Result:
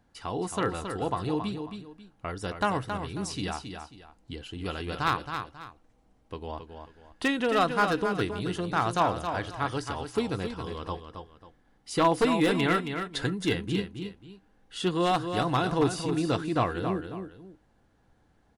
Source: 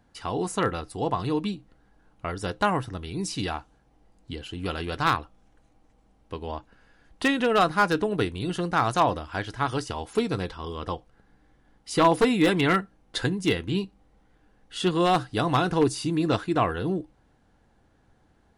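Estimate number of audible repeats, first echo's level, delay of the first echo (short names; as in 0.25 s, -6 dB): 2, -7.5 dB, 0.271 s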